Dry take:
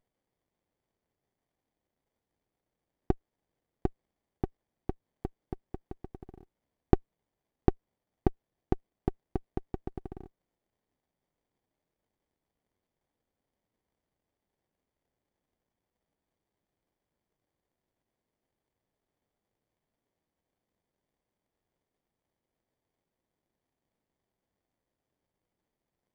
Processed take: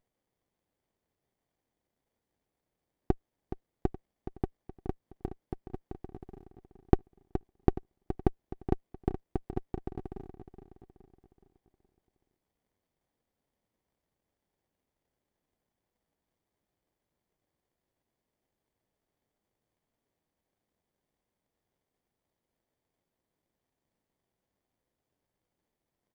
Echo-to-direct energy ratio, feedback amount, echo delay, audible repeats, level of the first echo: -10.0 dB, 46%, 421 ms, 4, -11.0 dB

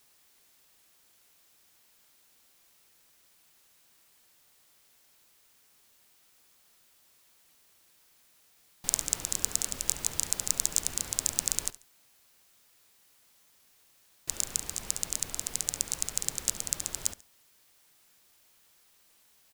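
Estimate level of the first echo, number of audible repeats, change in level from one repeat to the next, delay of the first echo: -18.0 dB, 2, -11.5 dB, 70 ms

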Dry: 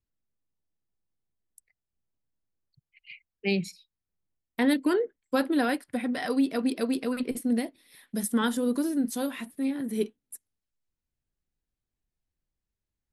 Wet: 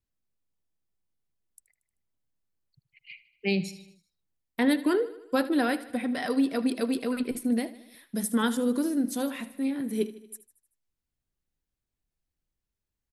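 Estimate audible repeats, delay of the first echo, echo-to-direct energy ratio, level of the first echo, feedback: 4, 77 ms, -15.0 dB, -16.5 dB, 57%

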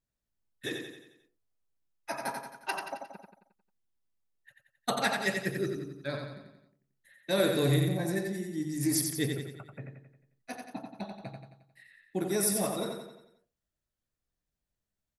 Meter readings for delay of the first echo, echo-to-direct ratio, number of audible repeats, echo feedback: 89 ms, -4.0 dB, 5, 50%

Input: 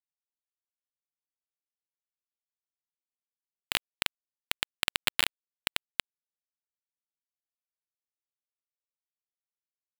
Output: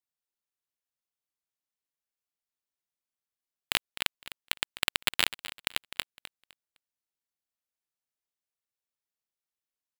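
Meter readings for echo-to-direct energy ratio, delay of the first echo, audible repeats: -14.5 dB, 255 ms, 2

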